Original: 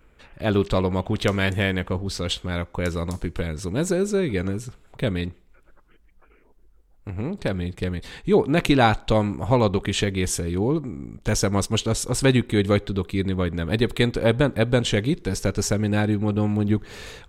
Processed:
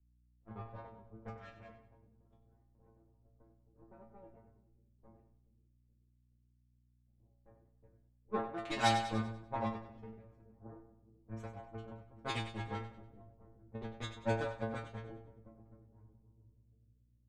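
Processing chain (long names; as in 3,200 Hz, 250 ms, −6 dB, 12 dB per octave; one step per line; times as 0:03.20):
fade-out on the ending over 2.25 s
harmonic generator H 3 −29 dB, 5 −33 dB, 7 −17 dB, 8 −21 dB, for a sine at −4 dBFS
first-order pre-emphasis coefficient 0.8
low-pass that shuts in the quiet parts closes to 740 Hz, open at −28 dBFS
parametric band 9,000 Hz +10.5 dB 1.2 octaves
stiff-string resonator 110 Hz, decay 0.51 s, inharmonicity 0.002
low-pass that shuts in the quiet parts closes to 740 Hz, open at −27.5 dBFS
mains hum 60 Hz, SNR 13 dB
echo with a time of its own for lows and highs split 420 Hz, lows 424 ms, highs 97 ms, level −9 dB
multiband upward and downward expander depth 70%
level +4.5 dB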